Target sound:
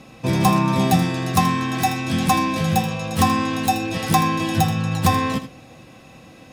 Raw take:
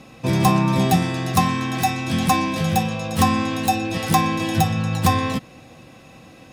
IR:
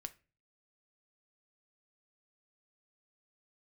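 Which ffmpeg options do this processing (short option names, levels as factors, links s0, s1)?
-filter_complex "[0:a]asplit=2[s0][s1];[1:a]atrim=start_sample=2205,adelay=80[s2];[s1][s2]afir=irnorm=-1:irlink=0,volume=0.447[s3];[s0][s3]amix=inputs=2:normalize=0"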